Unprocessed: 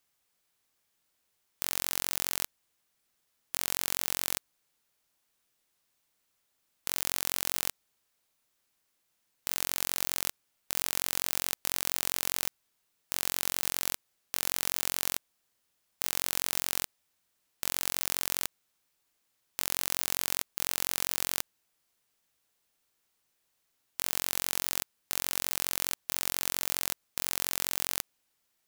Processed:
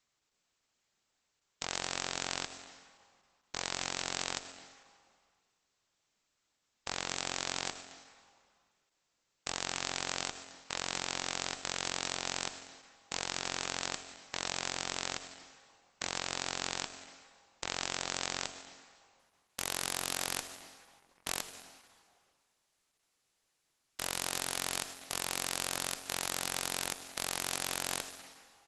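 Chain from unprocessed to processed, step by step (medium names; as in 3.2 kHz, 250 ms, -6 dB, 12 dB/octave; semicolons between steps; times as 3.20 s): 20.40–21.27 s: CVSD coder 64 kbps; dynamic bell 740 Hz, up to +5 dB, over -57 dBFS, Q 2.8; delay 215 ms -21 dB; reverberation RT60 2.0 s, pre-delay 65 ms, DRR 9.5 dB; Opus 12 kbps 48 kHz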